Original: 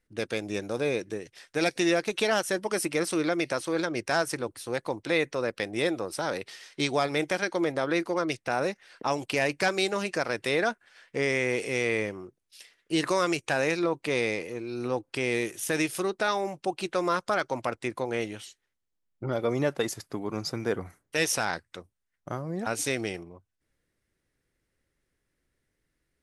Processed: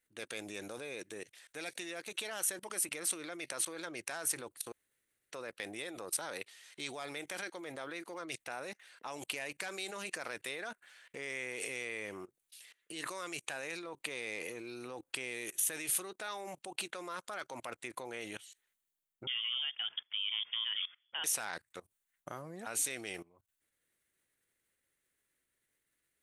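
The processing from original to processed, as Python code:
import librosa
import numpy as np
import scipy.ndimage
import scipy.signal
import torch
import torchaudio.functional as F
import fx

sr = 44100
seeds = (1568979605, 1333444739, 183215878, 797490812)

y = fx.quant_float(x, sr, bits=8, at=(6.83, 8.23))
y = fx.freq_invert(y, sr, carrier_hz=3400, at=(19.27, 21.24))
y = fx.edit(y, sr, fx.room_tone_fill(start_s=4.72, length_s=0.59), tone=tone)
y = fx.peak_eq(y, sr, hz=5200.0, db=-10.0, octaves=0.39)
y = fx.level_steps(y, sr, step_db=21)
y = fx.tilt_eq(y, sr, slope=3.0)
y = y * librosa.db_to_amplitude(1.0)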